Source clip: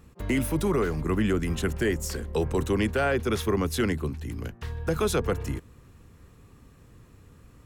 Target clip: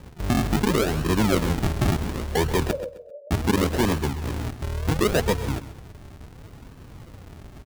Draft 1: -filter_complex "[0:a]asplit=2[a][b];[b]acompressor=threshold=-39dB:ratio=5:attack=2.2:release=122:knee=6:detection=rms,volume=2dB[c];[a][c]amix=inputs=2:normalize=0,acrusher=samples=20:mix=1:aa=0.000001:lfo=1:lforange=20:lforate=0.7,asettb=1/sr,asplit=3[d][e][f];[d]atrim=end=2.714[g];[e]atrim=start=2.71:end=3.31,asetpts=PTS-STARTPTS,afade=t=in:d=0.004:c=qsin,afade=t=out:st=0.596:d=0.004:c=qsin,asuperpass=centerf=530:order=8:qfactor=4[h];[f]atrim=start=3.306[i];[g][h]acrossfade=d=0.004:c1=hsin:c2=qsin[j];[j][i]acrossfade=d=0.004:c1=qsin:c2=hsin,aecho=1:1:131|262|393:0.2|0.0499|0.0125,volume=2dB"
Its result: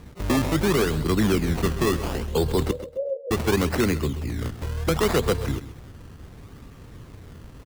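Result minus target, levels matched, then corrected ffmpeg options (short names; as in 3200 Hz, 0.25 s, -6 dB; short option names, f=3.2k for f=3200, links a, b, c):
decimation with a swept rate: distortion -9 dB
-filter_complex "[0:a]asplit=2[a][b];[b]acompressor=threshold=-39dB:ratio=5:attack=2.2:release=122:knee=6:detection=rms,volume=2dB[c];[a][c]amix=inputs=2:normalize=0,acrusher=samples=61:mix=1:aa=0.000001:lfo=1:lforange=61:lforate=0.7,asettb=1/sr,asplit=3[d][e][f];[d]atrim=end=2.714[g];[e]atrim=start=2.71:end=3.31,asetpts=PTS-STARTPTS,afade=t=in:d=0.004:c=qsin,afade=t=out:st=0.596:d=0.004:c=qsin,asuperpass=centerf=530:order=8:qfactor=4[h];[f]atrim=start=3.306[i];[g][h]acrossfade=d=0.004:c1=hsin:c2=qsin[j];[j][i]acrossfade=d=0.004:c1=qsin:c2=hsin,aecho=1:1:131|262|393:0.2|0.0499|0.0125,volume=2dB"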